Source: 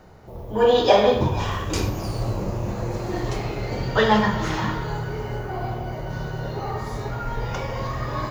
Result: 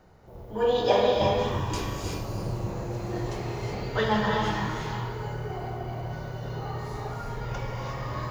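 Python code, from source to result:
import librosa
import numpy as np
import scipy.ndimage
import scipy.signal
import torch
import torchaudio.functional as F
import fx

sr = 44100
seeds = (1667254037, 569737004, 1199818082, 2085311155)

y = fx.rev_gated(x, sr, seeds[0], gate_ms=390, shape='rising', drr_db=0.5)
y = F.gain(torch.from_numpy(y), -8.0).numpy()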